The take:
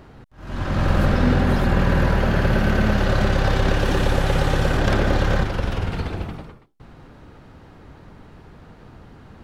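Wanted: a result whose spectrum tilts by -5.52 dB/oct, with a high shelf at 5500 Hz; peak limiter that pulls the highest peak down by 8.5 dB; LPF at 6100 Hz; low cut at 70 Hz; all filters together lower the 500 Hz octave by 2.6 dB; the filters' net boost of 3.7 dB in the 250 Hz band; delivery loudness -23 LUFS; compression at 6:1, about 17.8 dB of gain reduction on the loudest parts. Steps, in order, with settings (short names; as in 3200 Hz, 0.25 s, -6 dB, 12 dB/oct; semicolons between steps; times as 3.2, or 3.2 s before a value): HPF 70 Hz; LPF 6100 Hz; bell 250 Hz +6 dB; bell 500 Hz -5 dB; high shelf 5500 Hz +7.5 dB; compressor 6:1, threshold -31 dBFS; gain +16.5 dB; limiter -12.5 dBFS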